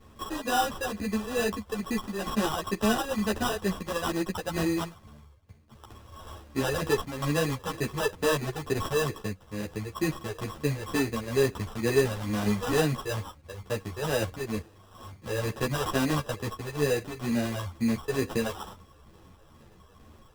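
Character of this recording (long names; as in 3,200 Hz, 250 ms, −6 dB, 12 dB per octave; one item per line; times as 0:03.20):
a buzz of ramps at a fixed pitch in blocks of 8 samples
phaser sweep stages 8, 2.2 Hz, lowest notch 220–4,800 Hz
aliases and images of a low sample rate 2,200 Hz, jitter 0%
a shimmering, thickened sound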